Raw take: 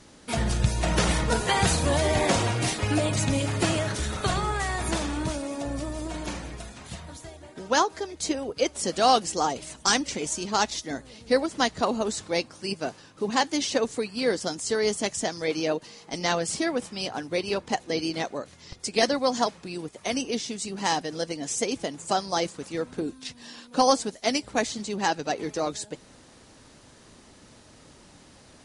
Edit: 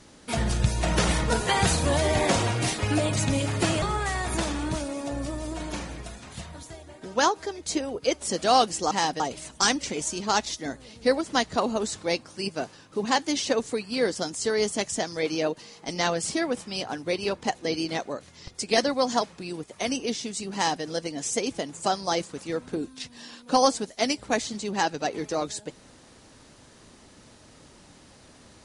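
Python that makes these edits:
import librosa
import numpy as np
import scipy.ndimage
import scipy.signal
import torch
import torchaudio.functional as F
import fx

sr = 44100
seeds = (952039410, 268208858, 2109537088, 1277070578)

y = fx.edit(x, sr, fx.cut(start_s=3.82, length_s=0.54),
    fx.duplicate(start_s=20.79, length_s=0.29, to_s=9.45), tone=tone)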